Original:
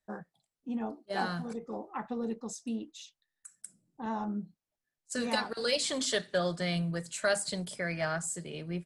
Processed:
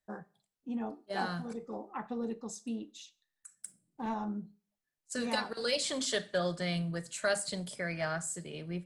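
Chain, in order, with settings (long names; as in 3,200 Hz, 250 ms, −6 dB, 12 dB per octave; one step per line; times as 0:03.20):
0:03.55–0:04.14: leveller curve on the samples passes 1
four-comb reverb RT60 0.37 s, combs from 30 ms, DRR 18.5 dB
level −2 dB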